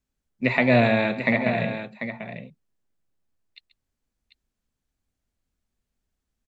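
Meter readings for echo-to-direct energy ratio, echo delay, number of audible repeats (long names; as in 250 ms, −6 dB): −8.5 dB, 134 ms, 2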